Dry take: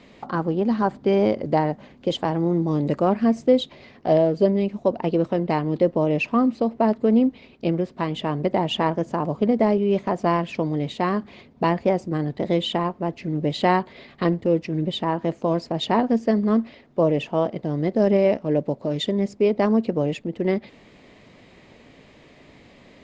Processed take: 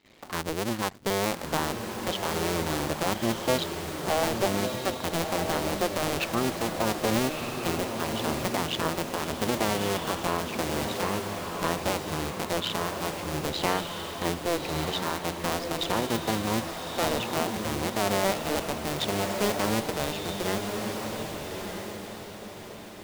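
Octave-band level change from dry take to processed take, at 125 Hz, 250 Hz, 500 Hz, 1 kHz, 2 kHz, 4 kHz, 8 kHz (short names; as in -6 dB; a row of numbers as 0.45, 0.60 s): -7.0 dB, -9.5 dB, -8.0 dB, -3.5 dB, +2.0 dB, +2.0 dB, n/a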